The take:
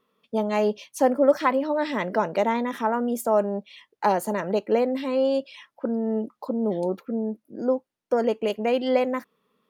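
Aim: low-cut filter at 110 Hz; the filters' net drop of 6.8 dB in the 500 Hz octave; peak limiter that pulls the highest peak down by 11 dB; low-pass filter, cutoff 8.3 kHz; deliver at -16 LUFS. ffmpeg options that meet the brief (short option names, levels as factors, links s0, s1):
-af "highpass=110,lowpass=8300,equalizer=f=500:t=o:g=-8,volume=5.96,alimiter=limit=0.562:level=0:latency=1"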